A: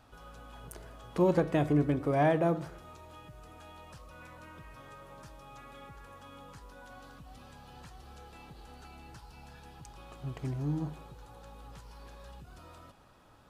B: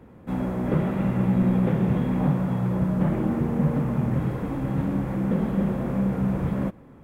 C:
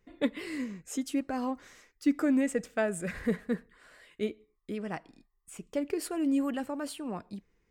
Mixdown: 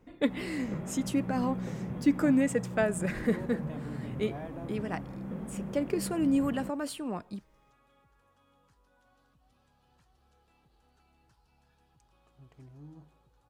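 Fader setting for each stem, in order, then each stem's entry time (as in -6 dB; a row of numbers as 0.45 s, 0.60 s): -17.0 dB, -14.5 dB, +1.5 dB; 2.15 s, 0.00 s, 0.00 s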